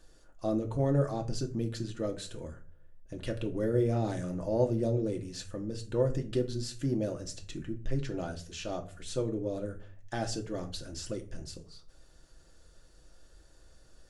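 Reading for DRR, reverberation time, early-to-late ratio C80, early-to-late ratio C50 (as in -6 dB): 3.0 dB, 0.40 s, 19.0 dB, 14.5 dB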